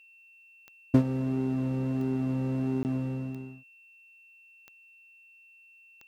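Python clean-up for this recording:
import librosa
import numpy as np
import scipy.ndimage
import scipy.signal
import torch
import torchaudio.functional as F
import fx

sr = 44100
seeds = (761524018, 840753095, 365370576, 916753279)

y = fx.fix_declick_ar(x, sr, threshold=10.0)
y = fx.notch(y, sr, hz=2700.0, q=30.0)
y = fx.fix_interpolate(y, sr, at_s=(2.83,), length_ms=19.0)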